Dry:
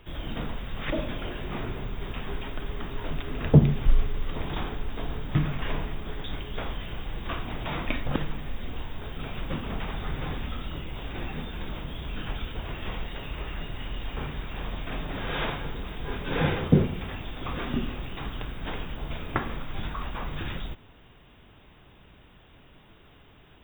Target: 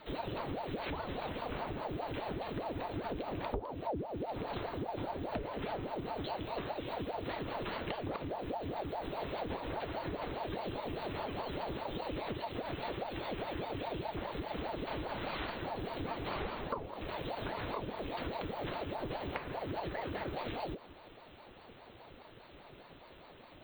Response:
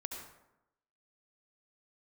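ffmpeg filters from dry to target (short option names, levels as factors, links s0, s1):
-af "afreqshift=80,acompressor=threshold=0.02:ratio=12,aeval=exprs='val(0)*sin(2*PI*490*n/s+490*0.65/4.9*sin(2*PI*4.9*n/s))':c=same,volume=1.19"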